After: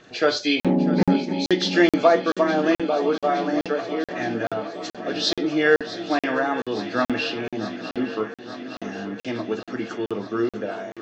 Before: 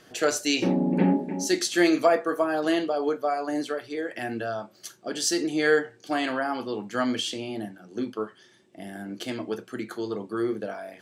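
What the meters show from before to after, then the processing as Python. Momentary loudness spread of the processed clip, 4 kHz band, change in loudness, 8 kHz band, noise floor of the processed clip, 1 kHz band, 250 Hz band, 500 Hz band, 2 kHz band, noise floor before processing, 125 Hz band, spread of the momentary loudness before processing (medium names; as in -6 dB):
12 LU, +4.0 dB, +3.5 dB, -8.5 dB, under -85 dBFS, +4.5 dB, +3.5 dB, +4.0 dB, +4.0 dB, -57 dBFS, +4.0 dB, 13 LU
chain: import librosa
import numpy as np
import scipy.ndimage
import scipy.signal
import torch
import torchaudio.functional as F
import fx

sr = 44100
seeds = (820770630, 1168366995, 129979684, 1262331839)

y = fx.freq_compress(x, sr, knee_hz=2000.0, ratio=1.5)
y = fx.echo_swing(y, sr, ms=867, ratio=3, feedback_pct=69, wet_db=-14.0)
y = fx.buffer_crackle(y, sr, first_s=0.6, period_s=0.43, block=2048, kind='zero')
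y = F.gain(torch.from_numpy(y), 4.0).numpy()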